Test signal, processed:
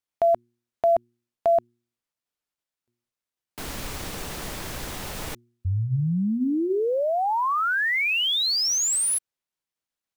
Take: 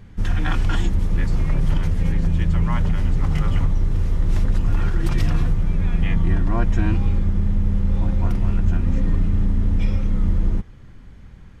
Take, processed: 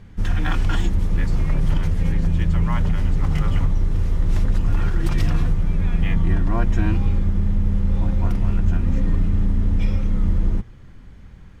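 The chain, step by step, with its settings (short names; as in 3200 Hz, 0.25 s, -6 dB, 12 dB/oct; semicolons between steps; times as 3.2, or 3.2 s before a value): de-hum 118.8 Hz, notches 3; IMA ADPCM 176 kbps 44100 Hz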